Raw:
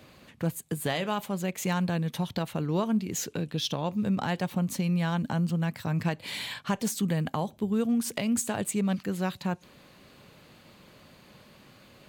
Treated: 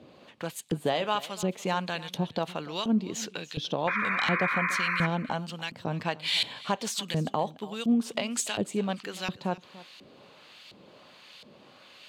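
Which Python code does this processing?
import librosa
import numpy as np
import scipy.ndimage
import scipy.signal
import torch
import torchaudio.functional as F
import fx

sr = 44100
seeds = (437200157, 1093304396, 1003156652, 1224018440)

p1 = fx.filter_lfo_bandpass(x, sr, shape='saw_up', hz=1.4, low_hz=310.0, high_hz=3200.0, q=0.8)
p2 = fx.high_shelf_res(p1, sr, hz=2500.0, db=6.5, q=1.5)
p3 = fx.spec_paint(p2, sr, seeds[0], shape='noise', start_s=3.87, length_s=1.2, low_hz=970.0, high_hz=2500.0, level_db=-34.0)
p4 = p3 + fx.echo_single(p3, sr, ms=291, db=-18.5, dry=0)
y = p4 * 10.0 ** (5.0 / 20.0)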